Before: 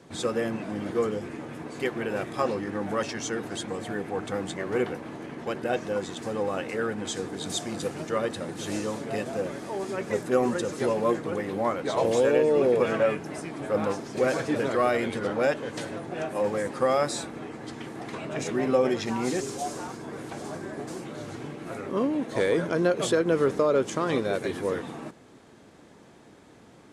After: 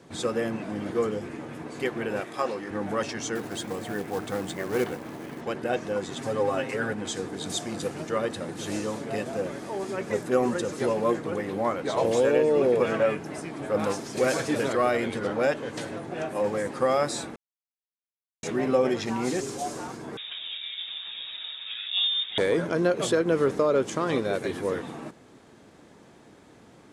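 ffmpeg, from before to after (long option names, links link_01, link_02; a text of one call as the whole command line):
ffmpeg -i in.wav -filter_complex "[0:a]asettb=1/sr,asplit=3[link_01][link_02][link_03];[link_01]atrim=end=2.204[link_04];[link_02]atrim=start=2.2:end=2.71,asetpts=PTS-STARTPTS,afade=type=in:duration=0.004:curve=qsin,afade=type=out:start_time=0.506:duration=0.004:curve=qsin,highpass=frequency=410:poles=1[link_05];[link_03]atrim=start=2.706[link_06];[link_04][link_05]acrossfade=duration=0.004:curve1=hsin:curve2=qsin[link_07];[link_07][link_06]acrossfade=duration=0.004:curve1=qsin:curve2=hsin,asettb=1/sr,asplit=3[link_08][link_09][link_10];[link_08]atrim=end=3.354[link_11];[link_09]atrim=start=3.35:end=5.41,asetpts=PTS-STARTPTS,afade=type=in:duration=0.004:curve=qsin,afade=type=out:start_time=2.056:duration=0.004:curve=qsin,acrusher=bits=4:mode=log:mix=0:aa=0.000001[link_12];[link_10]atrim=start=5.406[link_13];[link_11][link_12]acrossfade=duration=0.004:curve1=hsin:curve2=qsin[link_14];[link_14][link_13]acrossfade=duration=0.004:curve1=qsin:curve2=hsin,asettb=1/sr,asplit=3[link_15][link_16][link_17];[link_15]atrim=end=6.114[link_18];[link_16]atrim=start=6.11:end=6.93,asetpts=PTS-STARTPTS,afade=type=in:duration=0.004:curve=qsin,afade=type=out:start_time=0.816:duration=0.004:curve=qsin,aecho=1:1:7.5:0.82,atrim=end_sample=36162[link_19];[link_17]atrim=start=6.926[link_20];[link_18][link_19]acrossfade=duration=0.004:curve1=hsin:curve2=qsin[link_21];[link_21][link_20]acrossfade=duration=0.004:curve1=qsin:curve2=hsin,asettb=1/sr,asplit=3[link_22][link_23][link_24];[link_22]atrim=end=13.794[link_25];[link_23]atrim=start=13.79:end=14.73,asetpts=PTS-STARTPTS,afade=type=in:duration=0.004:curve=qsin,afade=type=out:start_time=0.936:duration=0.004:curve=qsin,highshelf=frequency=3800:gain=9[link_26];[link_24]atrim=start=14.726[link_27];[link_25][link_26]acrossfade=duration=0.004:curve1=hsin:curve2=qsin[link_28];[link_28][link_27]acrossfade=duration=0.004:curve1=qsin:curve2=hsin,asettb=1/sr,asplit=3[link_29][link_30][link_31];[link_29]atrim=end=20.174[link_32];[link_30]atrim=start=20.17:end=22.38,asetpts=PTS-STARTPTS,afade=type=in:duration=0.004:curve=qsin,afade=type=out:start_time=2.206:duration=0.004:curve=qsin,lowpass=frequency=3300:width_type=q:width=0.5098,lowpass=frequency=3300:width_type=q:width=0.6013,lowpass=frequency=3300:width_type=q:width=0.9,lowpass=frequency=3300:width_type=q:width=2.563,afreqshift=-3900[link_33];[link_31]atrim=start=22.376[link_34];[link_32][link_33]acrossfade=duration=0.004:curve1=hsin:curve2=qsin[link_35];[link_35][link_34]acrossfade=duration=0.004:curve1=qsin:curve2=hsin,asplit=3[link_36][link_37][link_38];[link_36]atrim=end=17.36,asetpts=PTS-STARTPTS,afade=type=out:start_time=17.356:duration=0.004:curve=hsin[link_39];[link_37]atrim=start=17.36:end=18.43,asetpts=PTS-STARTPTS,volume=0[link_40];[link_38]atrim=start=18.43,asetpts=PTS-STARTPTS,afade=type=in:duration=0.004:curve=hsin[link_41];[link_39][link_40][link_41]concat=n=3:v=0:a=1" out.wav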